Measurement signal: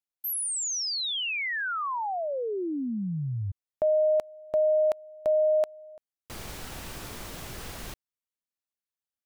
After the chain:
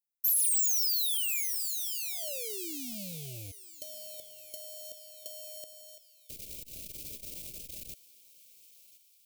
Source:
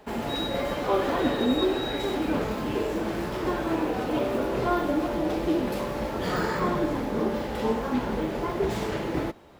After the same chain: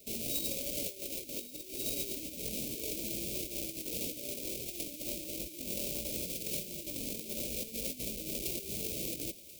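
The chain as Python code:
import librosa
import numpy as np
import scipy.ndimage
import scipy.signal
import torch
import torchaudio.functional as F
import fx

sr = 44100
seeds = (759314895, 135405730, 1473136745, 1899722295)

p1 = fx.halfwave_hold(x, sr)
p2 = scipy.signal.sosfilt(scipy.signal.ellip(4, 1.0, 80, [620.0, 2300.0], 'bandstop', fs=sr, output='sos'), p1)
p3 = fx.high_shelf(p2, sr, hz=12000.0, db=4.5)
p4 = fx.over_compress(p3, sr, threshold_db=-26.0, ratio=-0.5)
p5 = F.preemphasis(torch.from_numpy(p4), 0.8).numpy()
p6 = p5 + fx.echo_thinned(p5, sr, ms=1034, feedback_pct=55, hz=1100.0, wet_db=-17, dry=0)
p7 = fx.transformer_sat(p6, sr, knee_hz=730.0)
y = p7 * librosa.db_to_amplitude(-3.5)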